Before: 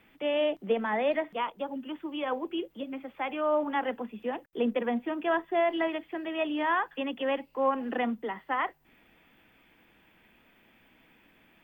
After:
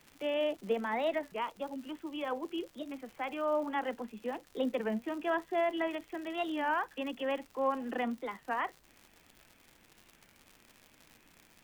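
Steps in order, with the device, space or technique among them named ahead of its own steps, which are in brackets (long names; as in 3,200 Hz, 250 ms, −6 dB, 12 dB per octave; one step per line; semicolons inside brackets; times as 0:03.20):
warped LP (wow of a warped record 33 1/3 rpm, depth 160 cents; surface crackle 140 per second −38 dBFS; pink noise bed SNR 33 dB)
level −4.5 dB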